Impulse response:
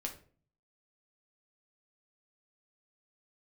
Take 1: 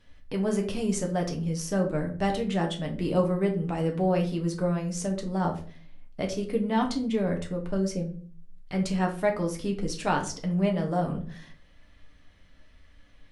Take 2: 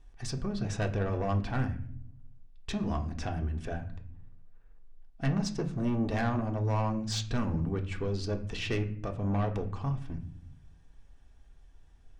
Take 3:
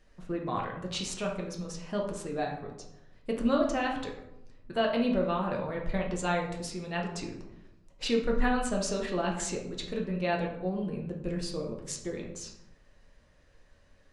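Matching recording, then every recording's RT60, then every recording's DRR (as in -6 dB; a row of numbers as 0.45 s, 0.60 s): 1; 0.45 s, no single decay rate, 0.85 s; 1.5 dB, 3.0 dB, -1.0 dB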